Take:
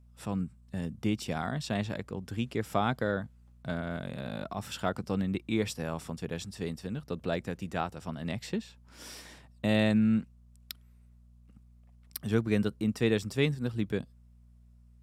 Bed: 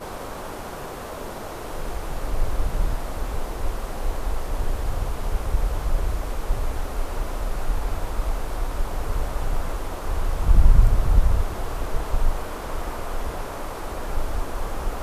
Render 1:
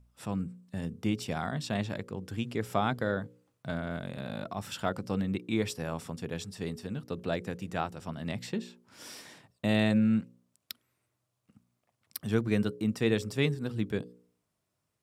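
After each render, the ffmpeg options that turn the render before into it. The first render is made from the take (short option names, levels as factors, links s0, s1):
-af "bandreject=f=60:t=h:w=4,bandreject=f=120:t=h:w=4,bandreject=f=180:t=h:w=4,bandreject=f=240:t=h:w=4,bandreject=f=300:t=h:w=4,bandreject=f=360:t=h:w=4,bandreject=f=420:t=h:w=4,bandreject=f=480:t=h:w=4,bandreject=f=540:t=h:w=4"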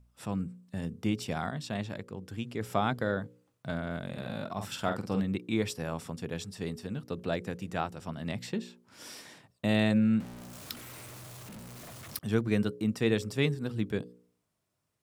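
-filter_complex "[0:a]asettb=1/sr,asplit=3[s0][s1][s2];[s0]atrim=end=4.044[s3];[s1]atrim=start=4.04:end=5.23,asetpts=PTS-STARTPTS,afade=t=in:d=0.004:c=qsin,afade=t=out:st=1.186:d=0.004:c=qsin,asplit=2[s4][s5];[s5]adelay=47,volume=0.447[s6];[s4][s6]amix=inputs=2:normalize=0,atrim=end_sample=52479[s7];[s2]atrim=start=5.226[s8];[s3][s7]acrossfade=d=0.004:c1=hsin:c2=qsin[s9];[s9][s8]acrossfade=d=0.004:c1=qsin:c2=hsin,asettb=1/sr,asplit=3[s10][s11][s12];[s10]atrim=end=10.204[s13];[s11]atrim=start=10.2:end=12.19,asetpts=PTS-STARTPTS,afade=t=in:d=0.004:c=qsin,afade=t=out:st=1.986:d=0.004:c=qsin,aeval=exprs='val(0)+0.5*0.01*sgn(val(0))':c=same[s14];[s12]atrim=start=12.186[s15];[s13][s14]acrossfade=d=0.004:c1=hsin:c2=qsin[s16];[s16][s15]acrossfade=d=0.004:c1=qsin:c2=hsin,asplit=3[s17][s18][s19];[s17]atrim=end=1.502[s20];[s18]atrim=start=1.498:end=2.612,asetpts=PTS-STARTPTS,volume=0.708[s21];[s19]atrim=start=2.608[s22];[s20][s21]acrossfade=d=0.004:c1=hsin:c2=hsin[s23];[s23][s22]acrossfade=d=0.004:c1=hsin:c2=hsin"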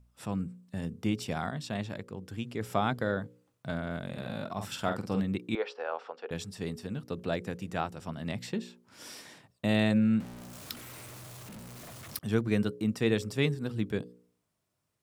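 -filter_complex "[0:a]asettb=1/sr,asplit=3[s0][s1][s2];[s0]atrim=end=5.554[s3];[s1]atrim=start=5.55:end=6.31,asetpts=PTS-STARTPTS,afade=t=in:d=0.004:c=qsin,afade=t=out:st=0.756:d=0.004:c=qsin,highpass=f=450:w=0.5412,highpass=f=450:w=1.3066,equalizer=f=480:t=q:w=4:g=6,equalizer=f=800:t=q:w=4:g=6,equalizer=f=1400:t=q:w=4:g=7,equalizer=f=2100:t=q:w=4:g=-4,equalizer=f=3600:t=q:w=4:g=-5,lowpass=f=3900:w=0.5412,lowpass=f=3900:w=1.3066[s4];[s2]atrim=start=6.306[s5];[s3][s4]acrossfade=d=0.004:c1=hsin:c2=qsin[s6];[s6][s5]acrossfade=d=0.004:c1=qsin:c2=hsin"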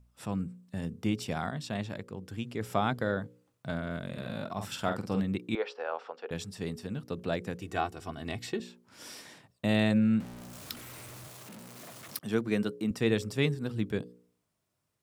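-filter_complex "[0:a]asettb=1/sr,asplit=3[s0][s1][s2];[s0]atrim=end=3.794[s3];[s1]atrim=start=3.79:end=4.37,asetpts=PTS-STARTPTS,afade=t=in:d=0.004:c=qsin,afade=t=out:st=0.576:d=0.004:c=qsin,bandreject=f=800:w=5.6[s4];[s2]atrim=start=4.366[s5];[s3][s4]acrossfade=d=0.004:c1=hsin:c2=qsin[s6];[s6][s5]acrossfade=d=0.004:c1=qsin:c2=hsin,asettb=1/sr,asplit=3[s7][s8][s9];[s7]atrim=end=7.614[s10];[s8]atrim=start=7.61:end=8.6,asetpts=PTS-STARTPTS,afade=t=in:d=0.004:c=qsin,afade=t=out:st=0.986:d=0.004:c=qsin,aecho=1:1:2.7:0.65,atrim=end_sample=43659[s11];[s9]atrim=start=8.596[s12];[s10][s11]acrossfade=d=0.004:c1=hsin:c2=qsin[s13];[s13][s12]acrossfade=d=0.004:c1=qsin:c2=hsin,asettb=1/sr,asplit=3[s14][s15][s16];[s14]atrim=end=11.284[s17];[s15]atrim=start=11.28:end=12.91,asetpts=PTS-STARTPTS,afade=t=in:d=0.004:c=qsin,afade=t=out:st=1.626:d=0.004:c=qsin,highpass=170[s18];[s16]atrim=start=12.906[s19];[s17][s18]acrossfade=d=0.004:c1=hsin:c2=qsin[s20];[s20][s19]acrossfade=d=0.004:c1=qsin:c2=hsin"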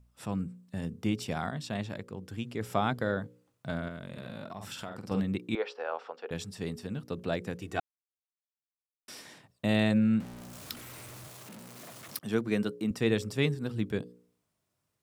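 -filter_complex "[0:a]asettb=1/sr,asplit=3[s0][s1][s2];[s0]atrim=end=3.884[s3];[s1]atrim=start=3.88:end=5.11,asetpts=PTS-STARTPTS,afade=t=in:d=0.004:c=qsin,afade=t=out:st=1.226:d=0.004:c=qsin,acompressor=threshold=0.0141:ratio=4:attack=3.2:release=140:knee=1:detection=peak[s4];[s2]atrim=start=5.106[s5];[s3][s4]acrossfade=d=0.004:c1=hsin:c2=qsin[s6];[s6][s5]acrossfade=d=0.004:c1=qsin:c2=hsin,asplit=3[s7][s8][s9];[s7]atrim=end=7.8,asetpts=PTS-STARTPTS,afade=t=out:st=7.796:d=0.004:c=hsin[s10];[s8]atrim=start=7.8:end=9.08,asetpts=PTS-STARTPTS,volume=0[s11];[s9]atrim=start=9.08,asetpts=PTS-STARTPTS,afade=t=in:d=0.004:c=hsin[s12];[s10][s11][s12]concat=n=3:v=0:a=1"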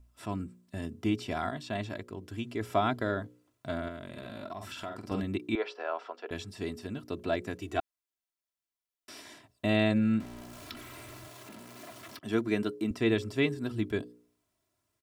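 -filter_complex "[0:a]acrossover=split=4200[s0][s1];[s1]acompressor=threshold=0.00251:ratio=4:attack=1:release=60[s2];[s0][s2]amix=inputs=2:normalize=0,aecho=1:1:3:0.65"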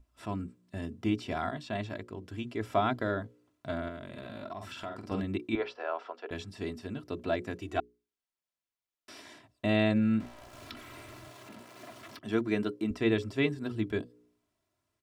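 -af "highshelf=f=7100:g=-9,bandreject=f=60:t=h:w=6,bandreject=f=120:t=h:w=6,bandreject=f=180:t=h:w=6,bandreject=f=240:t=h:w=6,bandreject=f=300:t=h:w=6,bandreject=f=360:t=h:w=6,bandreject=f=420:t=h:w=6"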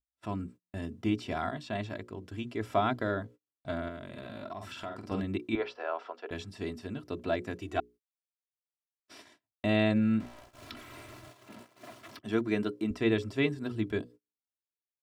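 -af "agate=range=0.02:threshold=0.00355:ratio=16:detection=peak"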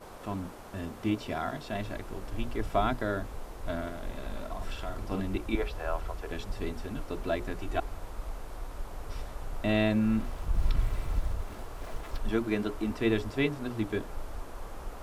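-filter_complex "[1:a]volume=0.224[s0];[0:a][s0]amix=inputs=2:normalize=0"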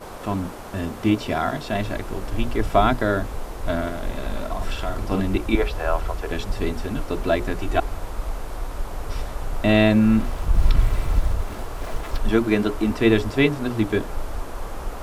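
-af "volume=3.16"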